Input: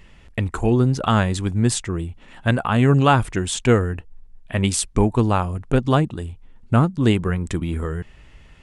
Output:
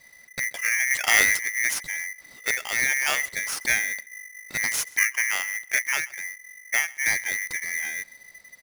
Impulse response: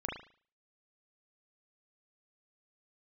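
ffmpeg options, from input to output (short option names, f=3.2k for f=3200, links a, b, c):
-filter_complex "[0:a]asplit=2[a][b];[b]aecho=0:1:133|266:0.0631|0.012[c];[a][c]amix=inputs=2:normalize=0,afreqshift=-39,equalizer=f=125:t=o:w=1:g=-12,equalizer=f=500:t=o:w=1:g=-6,equalizer=f=1k:t=o:w=1:g=-10,equalizer=f=2k:t=o:w=1:g=-7,equalizer=f=4k:t=o:w=1:g=6,equalizer=f=8k:t=o:w=1:g=12,asplit=3[d][e][f];[d]afade=t=out:st=0.9:d=0.02[g];[e]acontrast=84,afade=t=in:st=0.9:d=0.02,afade=t=out:st=1.36:d=0.02[h];[f]afade=t=in:st=1.36:d=0.02[i];[g][h][i]amix=inputs=3:normalize=0,highshelf=f=3.1k:t=q:w=1.5:g=-11,aeval=exprs='val(0)*sgn(sin(2*PI*2000*n/s))':c=same,volume=-2.5dB"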